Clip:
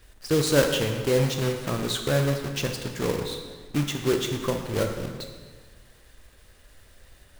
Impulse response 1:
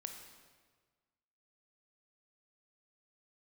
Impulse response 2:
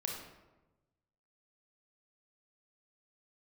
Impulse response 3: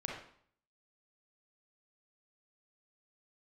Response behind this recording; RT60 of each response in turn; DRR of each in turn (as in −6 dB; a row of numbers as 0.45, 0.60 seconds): 1; 1.5, 1.1, 0.60 seconds; 4.0, 0.0, −1.5 decibels